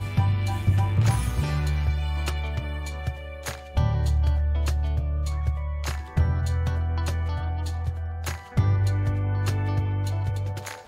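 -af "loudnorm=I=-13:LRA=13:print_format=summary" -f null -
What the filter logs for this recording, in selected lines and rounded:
Input Integrated:    -26.5 LUFS
Input True Peak:     -11.3 dBTP
Input LRA:             1.6 LU
Input Threshold:     -36.5 LUFS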